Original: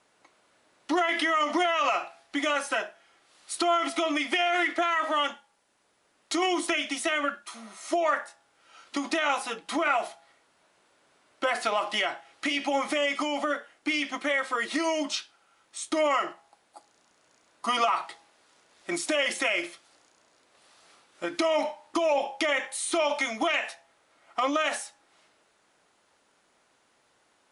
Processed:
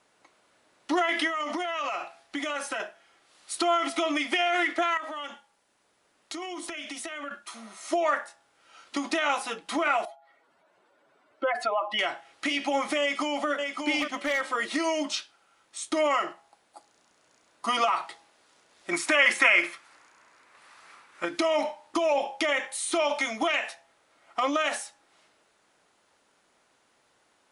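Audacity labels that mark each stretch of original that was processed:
1.270000	2.800000	downward compressor, threshold −27 dBFS
4.970000	7.310000	downward compressor 5 to 1, threshold −34 dBFS
10.050000	11.990000	expanding power law on the bin magnitudes exponent 1.9
13.000000	13.490000	delay throw 580 ms, feedback 15%, level −5 dB
14.010000	14.410000	hard clipping −21.5 dBFS
18.930000	21.250000	flat-topped bell 1,500 Hz +9 dB

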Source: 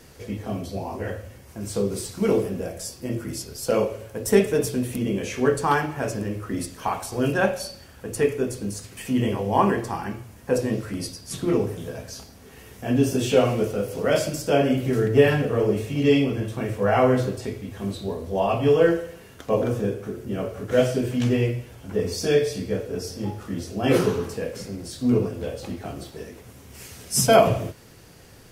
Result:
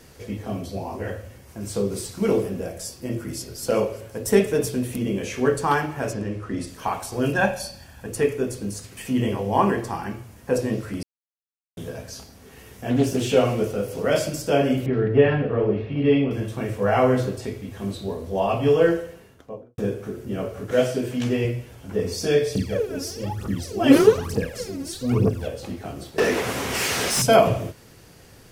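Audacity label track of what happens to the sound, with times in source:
2.930000	3.620000	delay throw 380 ms, feedback 50%, level −17 dB
6.130000	6.670000	high-frequency loss of the air 56 metres
7.360000	8.070000	comb filter 1.2 ms, depth 51%
11.030000	11.770000	silence
12.890000	13.290000	highs frequency-modulated by the lows depth 0.34 ms
14.860000	16.310000	Bessel low-pass filter 2,400 Hz, order 8
18.960000	19.780000	fade out and dull
20.710000	21.450000	high-pass filter 160 Hz 6 dB per octave
22.550000	25.480000	phase shifter 1.1 Hz, delay 3.7 ms, feedback 77%
26.180000	27.220000	mid-hump overdrive drive 35 dB, tone 2,600 Hz, clips at −8.5 dBFS

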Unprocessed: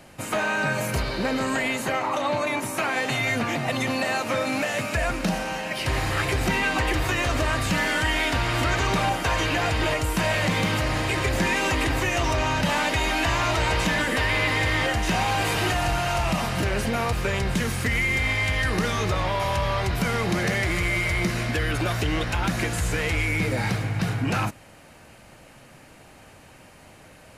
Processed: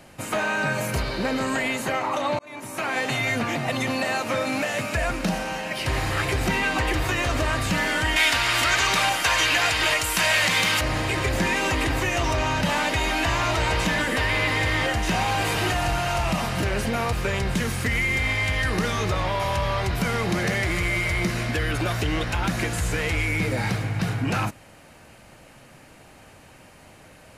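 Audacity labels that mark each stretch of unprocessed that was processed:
2.390000	2.960000	fade in
8.160000	10.810000	tilt shelving filter lows −8.5 dB, about 810 Hz

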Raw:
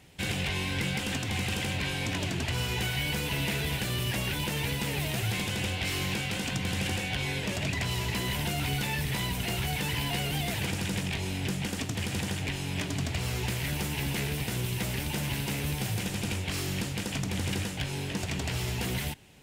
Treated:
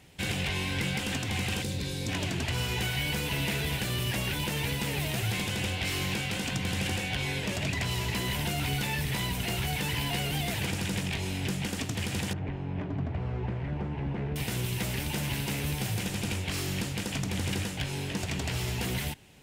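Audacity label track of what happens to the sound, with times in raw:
1.620000	2.080000	gain on a spectral selection 560–3,400 Hz −10 dB
12.330000	14.360000	low-pass filter 1,100 Hz

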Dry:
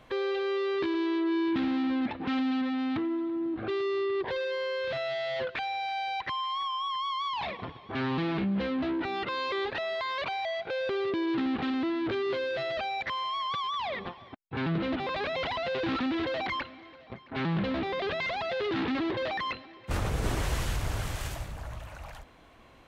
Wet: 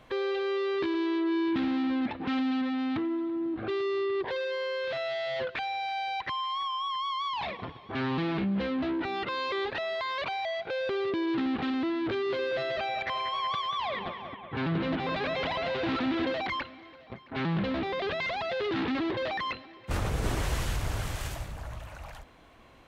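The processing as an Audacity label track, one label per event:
4.270000	5.270000	bass and treble bass −7 dB, treble 0 dB
12.200000	16.330000	bucket-brigade delay 187 ms, stages 4,096, feedback 67%, level −9 dB

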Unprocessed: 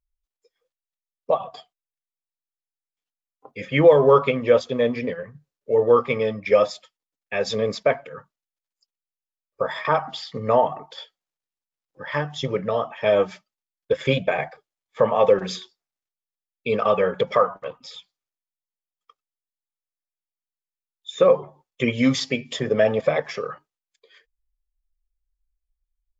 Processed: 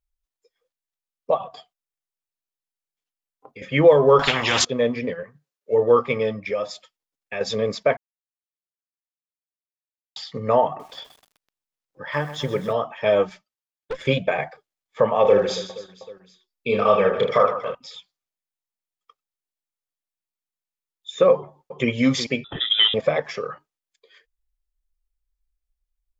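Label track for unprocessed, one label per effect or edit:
1.470000	3.620000	downward compressor, threshold −36 dBFS
4.190000	4.650000	every bin compressed towards the loudest bin 10 to 1
5.230000	5.710000	high-pass filter 330 Hz → 750 Hz 6 dB per octave
6.460000	7.410000	downward compressor 2 to 1, threshold −28 dBFS
7.970000	10.160000	silence
10.670000	12.730000	feedback echo at a low word length 127 ms, feedback 80%, word length 7 bits, level −13 dB
13.290000	14.070000	tube saturation drive 24 dB, bias 0.65
15.220000	17.750000	reverse bouncing-ball delay first gap 30 ms, each gap 1.6×, echoes 6
21.330000	21.890000	delay throw 370 ms, feedback 20%, level −10.5 dB
22.440000	22.940000	voice inversion scrambler carrier 3,700 Hz

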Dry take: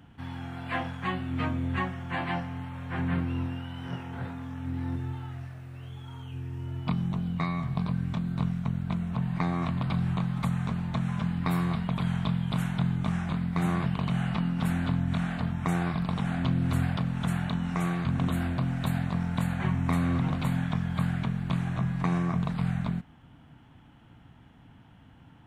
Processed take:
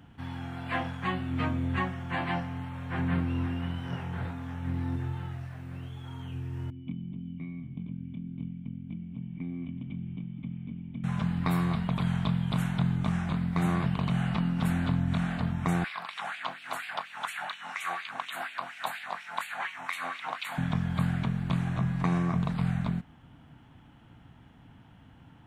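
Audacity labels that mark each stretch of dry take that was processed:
2.600000	3.270000	delay throw 520 ms, feedback 75%, level −9.5 dB
6.700000	11.040000	formant resonators in series i
15.840000	20.580000	auto-filter high-pass sine 4.2 Hz 730–2,700 Hz

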